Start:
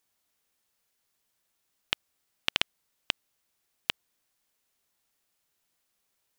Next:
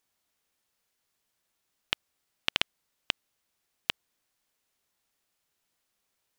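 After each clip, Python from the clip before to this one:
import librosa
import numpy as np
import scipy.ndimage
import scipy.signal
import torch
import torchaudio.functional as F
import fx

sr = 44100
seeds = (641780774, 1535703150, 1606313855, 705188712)

y = fx.high_shelf(x, sr, hz=8200.0, db=-4.0)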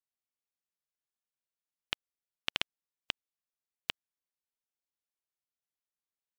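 y = fx.upward_expand(x, sr, threshold_db=-37.0, expansion=2.5)
y = y * 10.0 ** (-5.5 / 20.0)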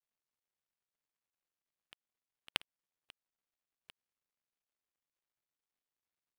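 y = scipy.ndimage.median_filter(x, 9, mode='constant')
y = fx.auto_swell(y, sr, attack_ms=124.0)
y = y * 10.0 ** (7.5 / 20.0)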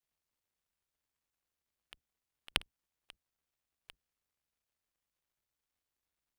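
y = fx.octave_divider(x, sr, octaves=2, level_db=4.0)
y = y * 10.0 ** (3.0 / 20.0)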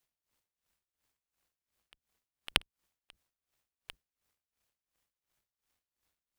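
y = x * 10.0 ** (-18 * (0.5 - 0.5 * np.cos(2.0 * np.pi * 2.8 * np.arange(len(x)) / sr)) / 20.0)
y = y * 10.0 ** (9.0 / 20.0)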